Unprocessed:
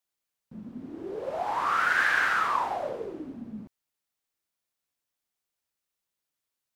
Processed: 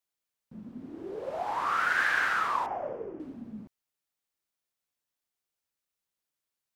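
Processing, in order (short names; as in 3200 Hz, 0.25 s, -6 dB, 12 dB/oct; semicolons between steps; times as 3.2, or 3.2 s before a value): 2.66–3.2 running mean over 11 samples; gain -2.5 dB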